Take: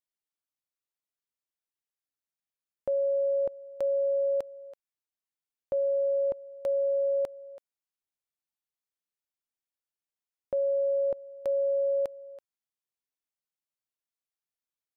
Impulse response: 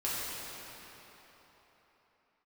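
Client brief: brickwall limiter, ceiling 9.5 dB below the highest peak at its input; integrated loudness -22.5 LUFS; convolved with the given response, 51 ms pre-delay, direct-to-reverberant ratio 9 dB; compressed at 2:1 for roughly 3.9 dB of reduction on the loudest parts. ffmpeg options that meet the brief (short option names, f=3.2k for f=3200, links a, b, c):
-filter_complex "[0:a]acompressor=threshold=-32dB:ratio=2,alimiter=level_in=9dB:limit=-24dB:level=0:latency=1,volume=-9dB,asplit=2[a][b];[1:a]atrim=start_sample=2205,adelay=51[c];[b][c]afir=irnorm=-1:irlink=0,volume=-16.5dB[d];[a][d]amix=inputs=2:normalize=0,volume=15.5dB"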